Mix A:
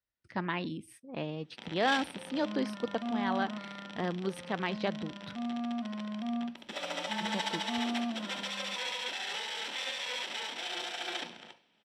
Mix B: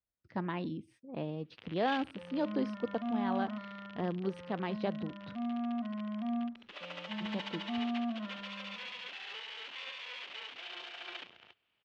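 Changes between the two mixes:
speech: add parametric band 2,100 Hz −7 dB 1.9 octaves
first sound: send off
master: add high-frequency loss of the air 160 metres

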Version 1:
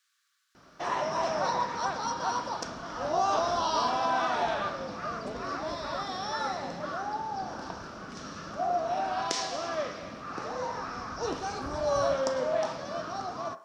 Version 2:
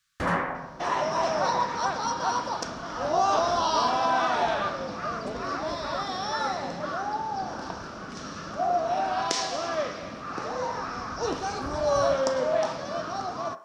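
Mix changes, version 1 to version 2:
first sound: unmuted
second sound +3.5 dB

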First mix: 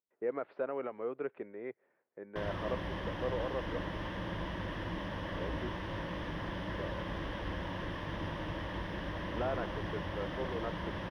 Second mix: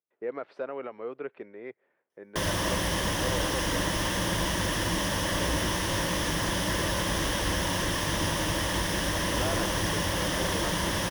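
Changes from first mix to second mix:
background +8.5 dB
master: remove high-frequency loss of the air 380 metres

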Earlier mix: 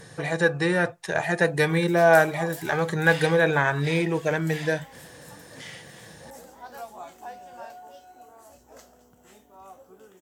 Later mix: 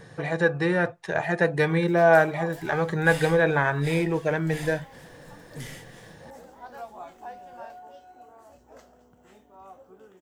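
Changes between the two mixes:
second sound: remove flat-topped band-pass 1,700 Hz, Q 0.5
master: add parametric band 12,000 Hz −12.5 dB 2.1 octaves

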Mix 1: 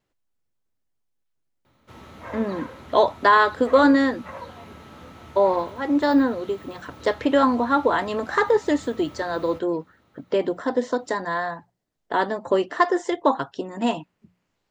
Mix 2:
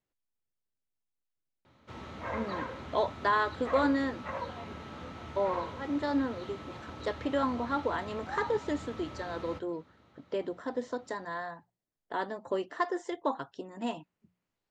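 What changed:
speech −11.5 dB
background: add low-pass filter 6,100 Hz 12 dB per octave

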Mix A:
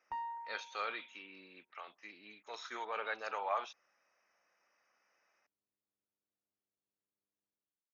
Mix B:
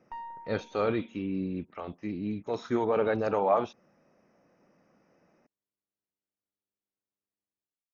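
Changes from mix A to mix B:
speech: remove high-pass filter 1,400 Hz 12 dB per octave
master: remove high-pass filter 46 Hz

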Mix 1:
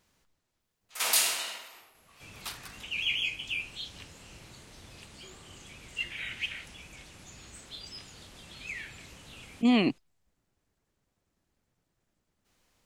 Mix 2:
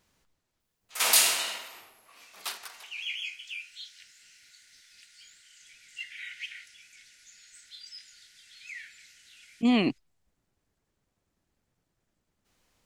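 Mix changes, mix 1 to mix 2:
first sound +4.0 dB
second sound: add Chebyshev high-pass with heavy ripple 1,400 Hz, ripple 6 dB

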